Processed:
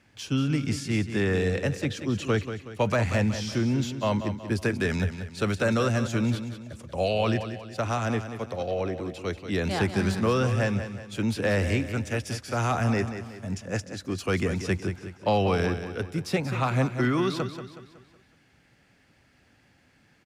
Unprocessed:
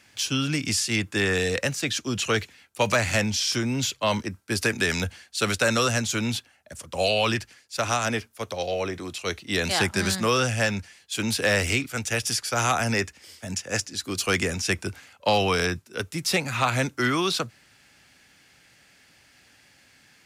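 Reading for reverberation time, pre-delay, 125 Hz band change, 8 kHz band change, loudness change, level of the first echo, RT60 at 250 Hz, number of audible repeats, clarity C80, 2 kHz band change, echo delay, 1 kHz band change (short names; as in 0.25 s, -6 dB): none, none, +3.0 dB, -13.0 dB, -2.5 dB, -10.0 dB, none, 4, none, -6.5 dB, 0.185 s, -3.5 dB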